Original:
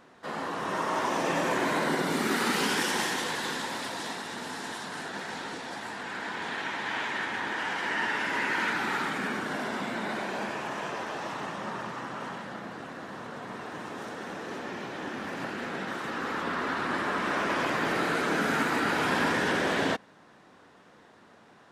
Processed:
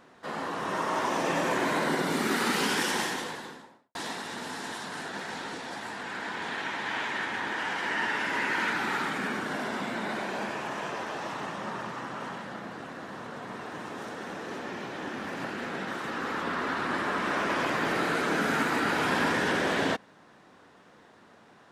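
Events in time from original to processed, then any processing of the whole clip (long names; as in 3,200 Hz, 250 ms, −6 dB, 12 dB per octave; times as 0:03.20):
0:02.91–0:03.95: fade out and dull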